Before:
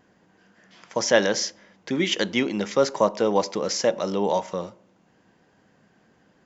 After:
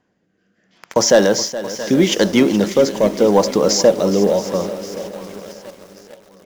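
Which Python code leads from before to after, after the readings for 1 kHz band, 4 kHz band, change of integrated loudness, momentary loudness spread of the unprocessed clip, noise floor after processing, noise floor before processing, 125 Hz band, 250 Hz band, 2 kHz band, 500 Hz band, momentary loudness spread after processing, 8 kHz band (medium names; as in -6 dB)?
+4.0 dB, +6.0 dB, +8.5 dB, 10 LU, -66 dBFS, -62 dBFS, +10.5 dB, +11.0 dB, +3.0 dB, +9.0 dB, 16 LU, no reading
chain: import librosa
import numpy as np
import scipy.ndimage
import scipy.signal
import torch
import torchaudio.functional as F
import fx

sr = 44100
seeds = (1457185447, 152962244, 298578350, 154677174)

p1 = fx.leveller(x, sr, passes=2)
p2 = fx.rotary(p1, sr, hz=0.75)
p3 = p2 + fx.echo_swing(p2, sr, ms=1128, ratio=1.5, feedback_pct=31, wet_db=-17, dry=0)
p4 = fx.dynamic_eq(p3, sr, hz=2400.0, q=0.76, threshold_db=-36.0, ratio=4.0, max_db=-8)
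p5 = fx.quant_dither(p4, sr, seeds[0], bits=6, dither='none')
p6 = p4 + (p5 * 10.0 ** (-5.0 / 20.0))
p7 = fx.echo_crushed(p6, sr, ms=421, feedback_pct=55, bits=6, wet_db=-14.0)
y = p7 * 10.0 ** (1.0 / 20.0)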